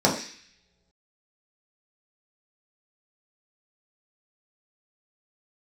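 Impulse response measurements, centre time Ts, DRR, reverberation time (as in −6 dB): 27 ms, −4.5 dB, non-exponential decay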